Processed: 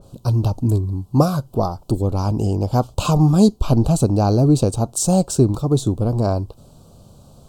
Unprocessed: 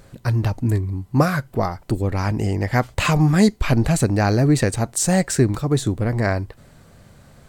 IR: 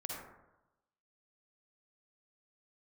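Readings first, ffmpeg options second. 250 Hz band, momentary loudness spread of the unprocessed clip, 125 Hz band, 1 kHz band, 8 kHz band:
+2.0 dB, 7 LU, +2.0 dB, +0.5 dB, −0.5 dB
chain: -af "asuperstop=centerf=1900:order=4:qfactor=0.87,adynamicequalizer=threshold=0.0112:dfrequency=2600:dqfactor=0.7:tfrequency=2600:tqfactor=0.7:attack=5:release=100:ratio=0.375:range=2:mode=cutabove:tftype=highshelf,volume=2dB"

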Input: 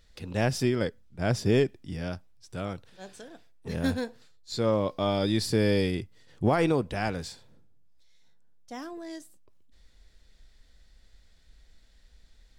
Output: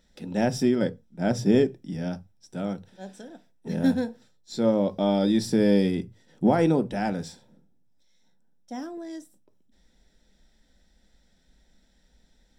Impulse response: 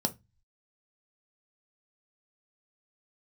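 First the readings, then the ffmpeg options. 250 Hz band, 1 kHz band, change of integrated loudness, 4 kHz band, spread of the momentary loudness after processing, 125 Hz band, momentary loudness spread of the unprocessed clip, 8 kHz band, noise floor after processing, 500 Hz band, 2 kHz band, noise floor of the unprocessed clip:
+6.0 dB, +1.5 dB, +3.5 dB, −2.0 dB, 19 LU, −0.5 dB, 18 LU, −0.5 dB, −64 dBFS, +2.5 dB, −2.0 dB, −59 dBFS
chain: -filter_complex "[0:a]asplit=2[link_01][link_02];[1:a]atrim=start_sample=2205,atrim=end_sample=6615[link_03];[link_02][link_03]afir=irnorm=-1:irlink=0,volume=-3dB[link_04];[link_01][link_04]amix=inputs=2:normalize=0,volume=-7dB"

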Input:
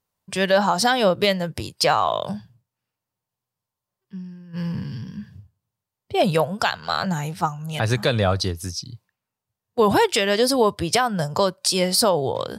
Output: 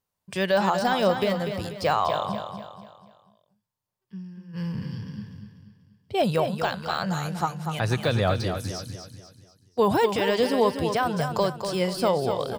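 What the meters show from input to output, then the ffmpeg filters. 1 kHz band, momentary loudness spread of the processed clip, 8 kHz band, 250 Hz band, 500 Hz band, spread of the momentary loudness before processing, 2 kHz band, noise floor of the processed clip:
−3.5 dB, 17 LU, −13.0 dB, −2.5 dB, −3.0 dB, 15 LU, −5.0 dB, −83 dBFS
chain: -af "deesser=0.65,aecho=1:1:243|486|729|972|1215:0.422|0.177|0.0744|0.0312|0.0131,volume=-3.5dB"

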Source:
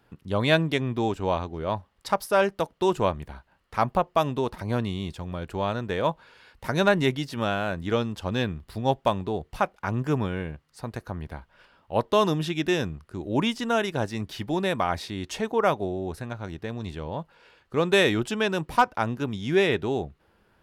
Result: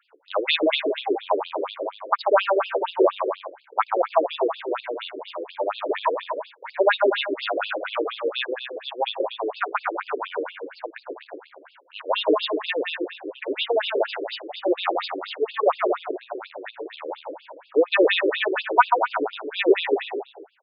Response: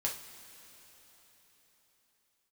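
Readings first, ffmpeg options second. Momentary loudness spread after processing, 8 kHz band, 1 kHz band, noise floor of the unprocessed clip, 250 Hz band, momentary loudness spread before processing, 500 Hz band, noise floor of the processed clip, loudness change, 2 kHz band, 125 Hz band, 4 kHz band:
15 LU, below −35 dB, +3.0 dB, −66 dBFS, −3.0 dB, 13 LU, +3.5 dB, −55 dBFS, +2.0 dB, +2.5 dB, below −40 dB, +4.0 dB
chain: -af "aecho=1:1:140|245|323.8|382.8|427.1:0.631|0.398|0.251|0.158|0.1,afftfilt=real='re*between(b*sr/1024,380*pow(3700/380,0.5+0.5*sin(2*PI*4.2*pts/sr))/1.41,380*pow(3700/380,0.5+0.5*sin(2*PI*4.2*pts/sr))*1.41)':imag='im*between(b*sr/1024,380*pow(3700/380,0.5+0.5*sin(2*PI*4.2*pts/sr))/1.41,380*pow(3700/380,0.5+0.5*sin(2*PI*4.2*pts/sr))*1.41)':win_size=1024:overlap=0.75,volume=7.5dB"

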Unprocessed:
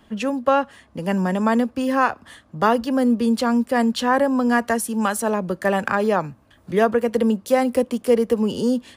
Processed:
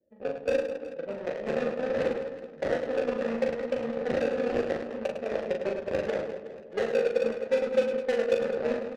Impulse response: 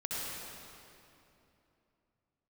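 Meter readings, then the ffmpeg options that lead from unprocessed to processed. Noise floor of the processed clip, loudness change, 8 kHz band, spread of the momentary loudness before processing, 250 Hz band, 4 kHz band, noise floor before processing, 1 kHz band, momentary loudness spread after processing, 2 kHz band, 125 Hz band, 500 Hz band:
−46 dBFS, −9.0 dB, below −15 dB, 5 LU, −16.0 dB, −11.0 dB, −55 dBFS, −17.5 dB, 8 LU, −11.0 dB, −14.0 dB, −5.0 dB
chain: -filter_complex "[0:a]bass=frequency=250:gain=-3,treble=frequency=4000:gain=-8,acrusher=samples=35:mix=1:aa=0.000001:lfo=1:lforange=21:lforate=0.74,asplit=3[link_01][link_02][link_03];[link_01]bandpass=frequency=530:width_type=q:width=8,volume=0dB[link_04];[link_02]bandpass=frequency=1840:width_type=q:width=8,volume=-6dB[link_05];[link_03]bandpass=frequency=2480:width_type=q:width=8,volume=-9dB[link_06];[link_04][link_05][link_06]amix=inputs=3:normalize=0,acrossover=split=300|3000[link_07][link_08][link_09];[link_08]acompressor=threshold=-33dB:ratio=6[link_10];[link_07][link_10][link_09]amix=inputs=3:normalize=0,lowshelf=frequency=320:gain=11.5,asplit=2[link_11][link_12];[link_12]highpass=frequency=190:width=0.5412,highpass=frequency=190:width=1.3066[link_13];[1:a]atrim=start_sample=2205,highshelf=frequency=3900:gain=11.5[link_14];[link_13][link_14]afir=irnorm=-1:irlink=0,volume=-6.5dB[link_15];[link_11][link_15]amix=inputs=2:normalize=0,aeval=exprs='0.2*(cos(1*acos(clip(val(0)/0.2,-1,1)))-cos(1*PI/2))+0.0251*(cos(5*acos(clip(val(0)/0.2,-1,1)))-cos(5*PI/2))+0.0355*(cos(7*acos(clip(val(0)/0.2,-1,1)))-cos(7*PI/2))':channel_layout=same,adynamicsmooth=sensitivity=2.5:basefreq=620,asplit=2[link_16][link_17];[link_17]adelay=13,volume=-11.5dB[link_18];[link_16][link_18]amix=inputs=2:normalize=0,aecho=1:1:40|104|206.4|370.2|632.4:0.631|0.398|0.251|0.158|0.1,volume=-1.5dB"

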